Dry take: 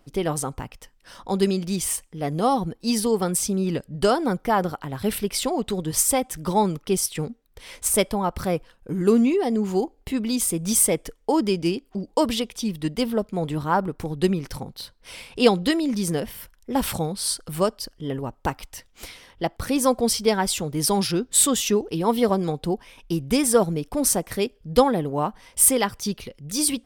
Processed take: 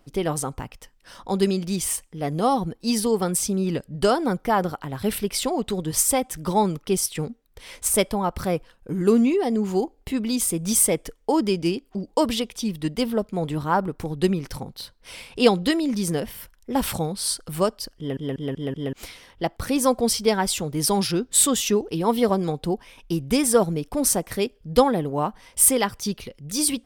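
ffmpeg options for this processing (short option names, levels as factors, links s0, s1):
-filter_complex "[0:a]asplit=6[s0][s1][s2][s3][s4][s5];[s0]atrim=end=18.172[s6];[s1]atrim=start=17.978:end=18.172[s7];[s2]atrim=start=17.978:end=18.172[s8];[s3]atrim=start=17.978:end=18.172[s9];[s4]atrim=start=17.978:end=18.172[s10];[s5]atrim=start=18.928[s11];[s6][s7]acrossfade=d=0.004:c1=hsin:c2=hsin[s12];[s12][s8]acrossfade=d=0.004:c1=hsin:c2=hsin[s13];[s13][s9]acrossfade=d=0.004:c1=hsin:c2=hsin[s14];[s14][s10]acrossfade=d=0.004:c1=hsin:c2=hsin[s15];[s15][s11]acrossfade=d=0.004:c1=hsin:c2=hsin"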